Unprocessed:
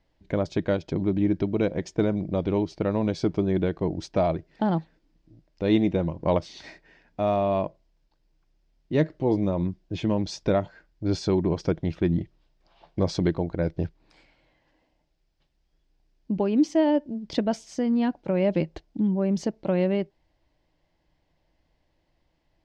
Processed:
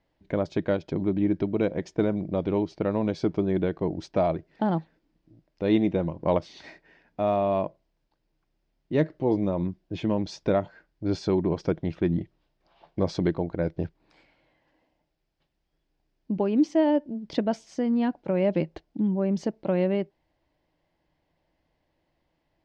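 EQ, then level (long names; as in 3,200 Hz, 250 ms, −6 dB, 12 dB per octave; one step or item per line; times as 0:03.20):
low-shelf EQ 74 Hz −10.5 dB
high-shelf EQ 5,100 Hz −10 dB
0.0 dB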